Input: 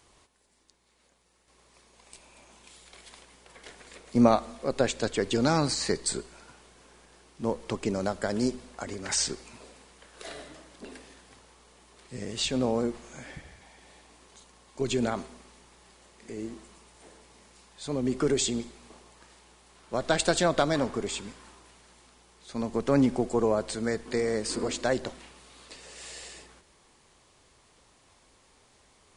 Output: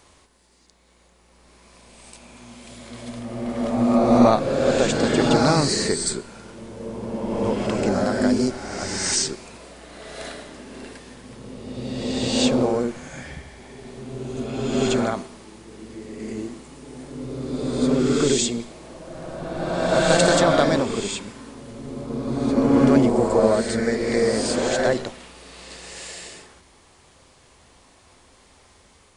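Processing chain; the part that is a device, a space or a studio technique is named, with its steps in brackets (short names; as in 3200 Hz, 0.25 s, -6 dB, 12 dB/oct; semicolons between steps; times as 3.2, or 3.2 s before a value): reverse reverb (reverse; reverb RT60 2.4 s, pre-delay 32 ms, DRR -1.5 dB; reverse); gain +4 dB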